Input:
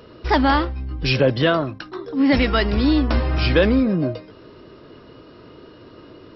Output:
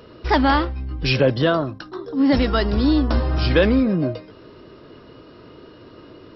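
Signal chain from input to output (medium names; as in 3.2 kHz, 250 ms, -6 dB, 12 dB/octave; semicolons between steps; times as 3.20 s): 1.34–3.51 s: peaking EQ 2.3 kHz -9 dB 0.64 oct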